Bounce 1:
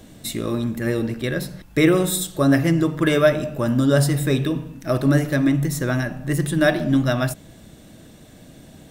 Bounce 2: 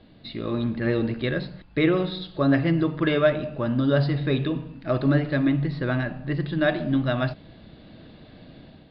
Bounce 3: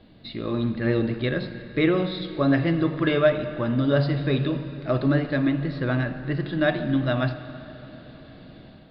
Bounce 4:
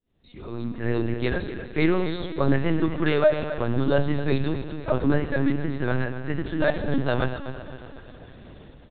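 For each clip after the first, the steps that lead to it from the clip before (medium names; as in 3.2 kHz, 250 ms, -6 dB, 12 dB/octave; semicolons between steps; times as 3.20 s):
Chebyshev low-pass 4.8 kHz, order 8; level rider gain up to 7 dB; trim -7 dB
plate-style reverb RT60 4 s, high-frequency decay 0.85×, DRR 11 dB
fade-in on the opening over 1.15 s; feedback delay 250 ms, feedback 43%, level -12 dB; LPC vocoder at 8 kHz pitch kept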